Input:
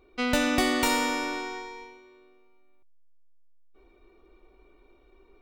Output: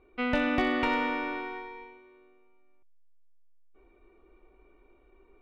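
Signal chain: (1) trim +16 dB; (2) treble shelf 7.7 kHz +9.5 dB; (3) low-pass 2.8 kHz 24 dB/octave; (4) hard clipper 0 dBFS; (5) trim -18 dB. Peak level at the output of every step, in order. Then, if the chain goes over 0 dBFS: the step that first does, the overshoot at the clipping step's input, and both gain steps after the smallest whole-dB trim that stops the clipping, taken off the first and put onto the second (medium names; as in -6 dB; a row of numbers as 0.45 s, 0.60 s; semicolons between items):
+5.0 dBFS, +7.0 dBFS, +3.5 dBFS, 0.0 dBFS, -18.0 dBFS; step 1, 3.5 dB; step 1 +12 dB, step 5 -14 dB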